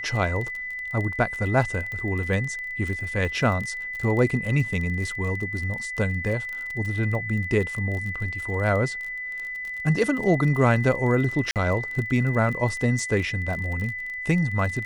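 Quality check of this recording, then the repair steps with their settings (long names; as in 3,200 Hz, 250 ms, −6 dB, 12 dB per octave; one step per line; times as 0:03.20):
surface crackle 29 per second −30 dBFS
whistle 2,000 Hz −30 dBFS
0:01.92: click −22 dBFS
0:11.51–0:11.56: drop-out 48 ms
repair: click removal
notch filter 2,000 Hz, Q 30
repair the gap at 0:11.51, 48 ms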